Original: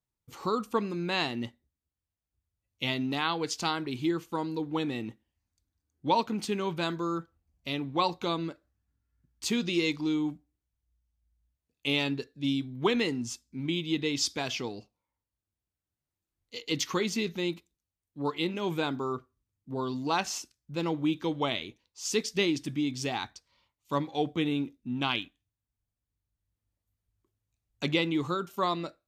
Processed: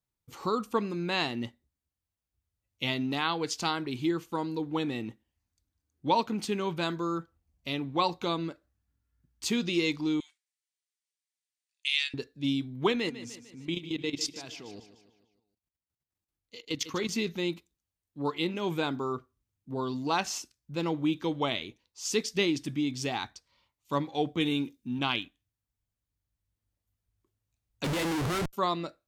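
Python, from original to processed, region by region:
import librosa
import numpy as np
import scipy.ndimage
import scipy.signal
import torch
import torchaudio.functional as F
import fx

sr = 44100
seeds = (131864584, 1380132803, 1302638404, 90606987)

y = fx.chain(x, sr, fx.cheby1_bandpass(low_hz=1800.0, high_hz=9500.0, order=3),
    fx.high_shelf(hz=3500.0, db=6.0), at=(10.2, 12.14))
y = fx.chain(y, sr, fx.level_steps(step_db=15),
    fx.echo_feedback(ms=150, feedback_pct=51, wet_db=-13.0), at=(12.92, 17.09))
y = fx.chain(y, sr, fx.high_shelf(hz=2300.0, db=9.5),
    fx.notch_comb(f0_hz=660.0), at=(24.4, 24.99))
y = fx.chain(y, sr, fx.schmitt(flips_db=-39.5),
    fx.resample_linear(factor=2), at=(27.84, 28.53))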